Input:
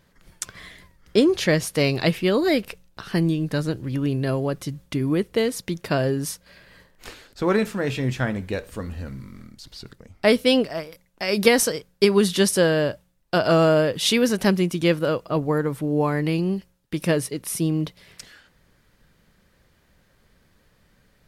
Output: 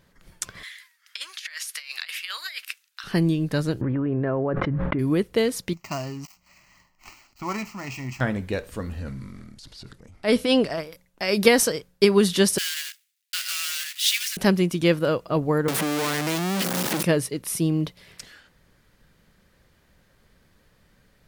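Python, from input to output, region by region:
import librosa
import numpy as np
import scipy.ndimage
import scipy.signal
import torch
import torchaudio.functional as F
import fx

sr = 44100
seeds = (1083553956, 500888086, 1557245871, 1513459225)

y = fx.chain(x, sr, fx.highpass(hz=1500.0, slope=24),
    fx.over_compress(threshold_db=-33.0, ratio=-0.5), at=(0.63, 3.04))
y = fx.chain(y, sr, fx.lowpass(hz=1700.0, slope=24),
    fx.low_shelf(hz=190.0, db=-9.5),
    fx.env_flatten(amount_pct=100), at=(3.81, 4.99))
y = fx.chain(y, sr, fx.dead_time(dead_ms=0.083),
    fx.low_shelf(hz=330.0, db=-9.0),
    fx.fixed_phaser(hz=2400.0, stages=8), at=(5.73, 8.21))
y = fx.chain(y, sr, fx.transient(attack_db=-10, sustain_db=4),
    fx.brickwall_lowpass(high_hz=12000.0), at=(8.99, 10.81))
y = fx.chain(y, sr, fx.block_float(bits=3),
    fx.cheby2_highpass(hz=440.0, order=4, stop_db=70), at=(12.58, 14.37))
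y = fx.chain(y, sr, fx.clip_1bit(),
    fx.highpass(hz=170.0, slope=24),
    fx.band_squash(depth_pct=70), at=(15.68, 17.03))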